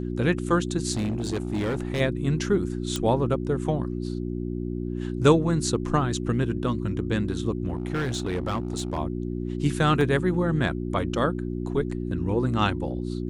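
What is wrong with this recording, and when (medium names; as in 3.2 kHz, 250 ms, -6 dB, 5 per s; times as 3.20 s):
hum 60 Hz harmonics 6 -30 dBFS
0.92–2.01 s: clipped -23 dBFS
2.96 s: pop -13 dBFS
7.68–8.98 s: clipped -23 dBFS
10.01 s: dropout 2.1 ms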